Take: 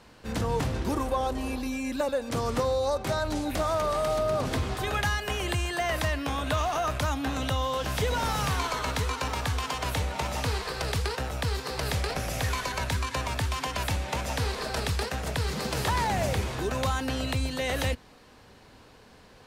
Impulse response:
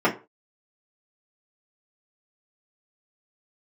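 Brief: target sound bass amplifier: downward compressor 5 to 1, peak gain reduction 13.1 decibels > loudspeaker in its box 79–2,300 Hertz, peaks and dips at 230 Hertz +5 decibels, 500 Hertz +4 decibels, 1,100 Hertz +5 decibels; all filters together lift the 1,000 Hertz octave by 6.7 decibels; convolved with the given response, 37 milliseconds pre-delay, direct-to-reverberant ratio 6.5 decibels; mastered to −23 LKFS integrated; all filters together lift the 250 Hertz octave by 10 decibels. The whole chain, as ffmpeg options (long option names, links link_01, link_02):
-filter_complex "[0:a]equalizer=frequency=250:width_type=o:gain=8.5,equalizer=frequency=1000:width_type=o:gain=4.5,asplit=2[link_01][link_02];[1:a]atrim=start_sample=2205,adelay=37[link_03];[link_02][link_03]afir=irnorm=-1:irlink=0,volume=-24dB[link_04];[link_01][link_04]amix=inputs=2:normalize=0,acompressor=threshold=-31dB:ratio=5,highpass=frequency=79:width=0.5412,highpass=frequency=79:width=1.3066,equalizer=frequency=230:width_type=q:width=4:gain=5,equalizer=frequency=500:width_type=q:width=4:gain=4,equalizer=frequency=1100:width_type=q:width=4:gain=5,lowpass=frequency=2300:width=0.5412,lowpass=frequency=2300:width=1.3066,volume=9dB"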